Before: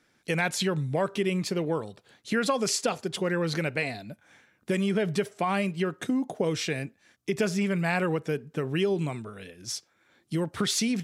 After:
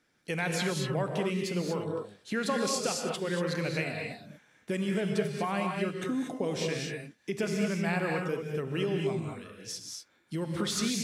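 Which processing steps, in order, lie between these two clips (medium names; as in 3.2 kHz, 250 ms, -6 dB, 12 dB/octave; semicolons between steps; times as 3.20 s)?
gated-style reverb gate 260 ms rising, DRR 1.5 dB; trim -5.5 dB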